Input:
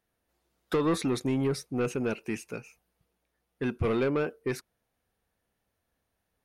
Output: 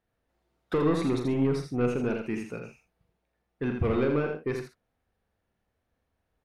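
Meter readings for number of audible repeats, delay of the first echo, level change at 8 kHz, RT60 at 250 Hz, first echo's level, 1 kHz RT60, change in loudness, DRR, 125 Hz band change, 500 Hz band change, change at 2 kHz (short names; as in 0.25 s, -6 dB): 3, 41 ms, n/a, none, -9.0 dB, none, +1.5 dB, none, +3.0 dB, +1.5 dB, 0.0 dB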